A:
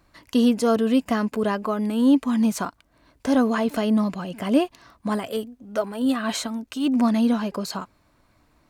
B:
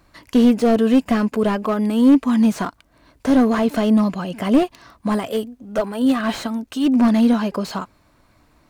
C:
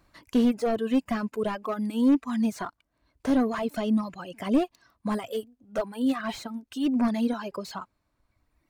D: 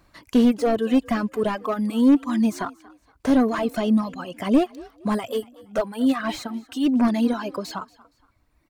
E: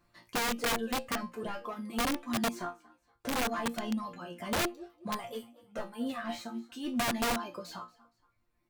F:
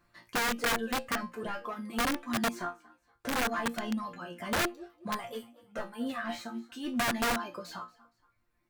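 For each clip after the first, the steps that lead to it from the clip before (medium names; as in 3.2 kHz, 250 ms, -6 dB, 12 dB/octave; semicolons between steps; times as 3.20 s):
slew-rate limiter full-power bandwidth 71 Hz; trim +5 dB
reverb removal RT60 1.9 s; trim -7.5 dB
frequency-shifting echo 234 ms, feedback 33%, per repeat +43 Hz, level -22 dB; trim +5 dB
chord resonator A#2 fifth, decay 0.24 s; integer overflow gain 26.5 dB; trim +1.5 dB
peaking EQ 1.6 kHz +5 dB 0.79 oct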